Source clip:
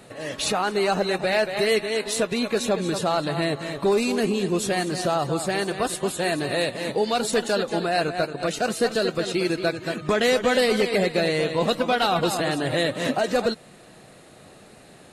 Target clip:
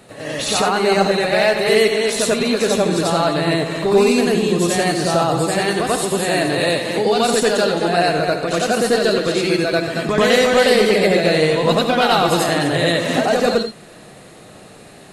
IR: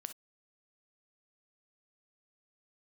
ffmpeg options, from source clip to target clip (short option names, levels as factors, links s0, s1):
-filter_complex "[0:a]asplit=2[s0][s1];[1:a]atrim=start_sample=2205,asetrate=32193,aresample=44100,adelay=90[s2];[s1][s2]afir=irnorm=-1:irlink=0,volume=2[s3];[s0][s3]amix=inputs=2:normalize=0,volume=1.19"